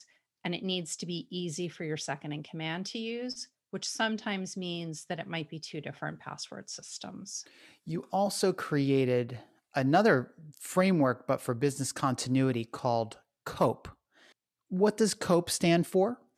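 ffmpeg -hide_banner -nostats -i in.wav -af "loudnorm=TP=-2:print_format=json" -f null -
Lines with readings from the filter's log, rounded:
"input_i" : "-30.6",
"input_tp" : "-11.4",
"input_lra" : "7.4",
"input_thresh" : "-41.3",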